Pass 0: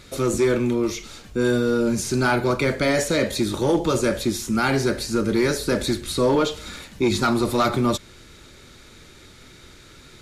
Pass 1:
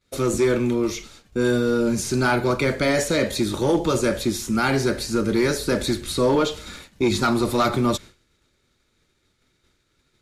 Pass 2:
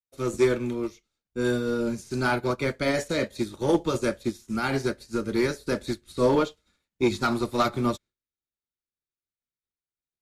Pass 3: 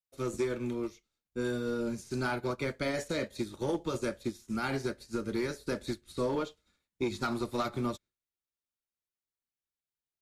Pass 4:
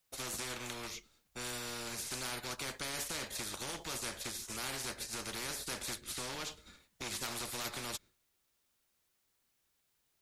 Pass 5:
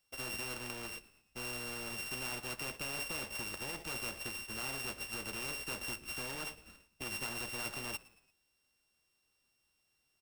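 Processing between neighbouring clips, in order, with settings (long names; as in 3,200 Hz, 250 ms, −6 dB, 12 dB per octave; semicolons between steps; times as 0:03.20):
downward expander −33 dBFS
expander for the loud parts 2.5 to 1, over −40 dBFS
downward compressor 4 to 1, threshold −25 dBFS, peak gain reduction 8 dB; level −4 dB
brickwall limiter −26.5 dBFS, peak gain reduction 4 dB; every bin compressed towards the loudest bin 4 to 1; level +4 dB
samples sorted by size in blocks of 16 samples; echo with shifted repeats 114 ms, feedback 48%, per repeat −67 Hz, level −21.5 dB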